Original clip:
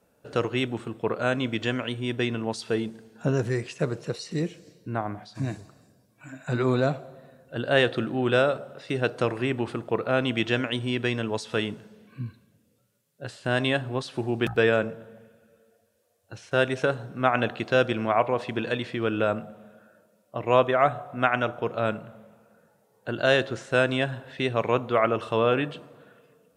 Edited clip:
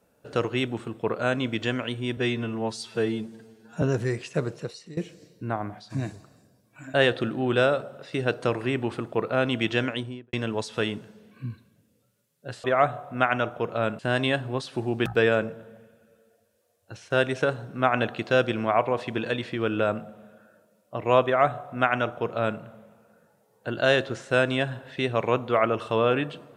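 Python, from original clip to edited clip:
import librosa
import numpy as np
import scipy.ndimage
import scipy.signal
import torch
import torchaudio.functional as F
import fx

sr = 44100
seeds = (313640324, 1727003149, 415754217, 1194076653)

y = fx.studio_fade_out(x, sr, start_s=10.62, length_s=0.47)
y = fx.edit(y, sr, fx.stretch_span(start_s=2.17, length_s=1.1, factor=1.5),
    fx.fade_out_to(start_s=3.93, length_s=0.49, floor_db=-19.0),
    fx.cut(start_s=6.39, length_s=1.31),
    fx.duplicate(start_s=20.66, length_s=1.35, to_s=13.4), tone=tone)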